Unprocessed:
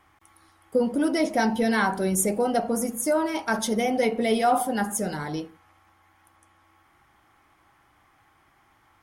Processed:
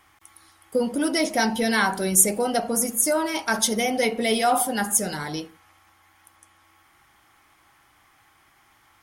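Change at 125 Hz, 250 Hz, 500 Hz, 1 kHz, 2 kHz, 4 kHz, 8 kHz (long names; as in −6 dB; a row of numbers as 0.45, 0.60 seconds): −1.0, −1.0, −0.5, +0.5, +3.5, +7.0, +9.0 decibels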